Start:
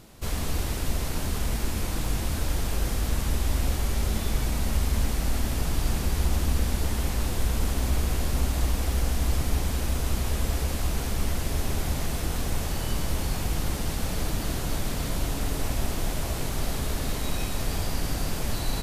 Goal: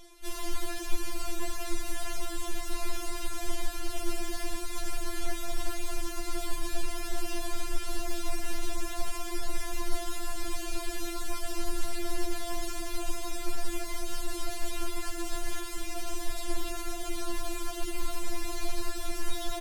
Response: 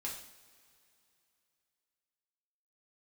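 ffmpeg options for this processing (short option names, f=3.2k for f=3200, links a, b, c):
-filter_complex "[0:a]lowshelf=f=320:g=-2,asetrate=42336,aresample=44100,acrossover=split=360|2400[a][b][c];[c]aeval=exprs='0.0168*(abs(mod(val(0)/0.0168+3,4)-2)-1)':c=same[d];[a][b][d]amix=inputs=3:normalize=0,asetrate=39289,aresample=44100,atempo=1.12246,areverse,acompressor=mode=upward:threshold=-37dB:ratio=2.5,areverse,afftfilt=real='re*4*eq(mod(b,16),0)':imag='im*4*eq(mod(b,16),0)':win_size=2048:overlap=0.75"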